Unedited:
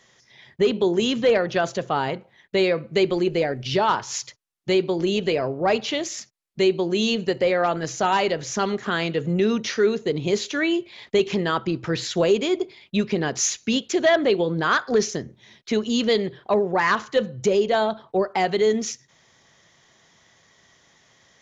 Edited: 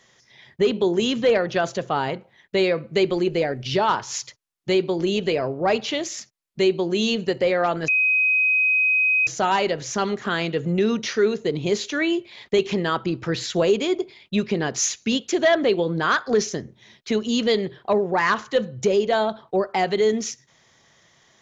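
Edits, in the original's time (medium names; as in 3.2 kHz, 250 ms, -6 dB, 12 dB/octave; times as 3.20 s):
7.88 s: add tone 2.52 kHz -16 dBFS 1.39 s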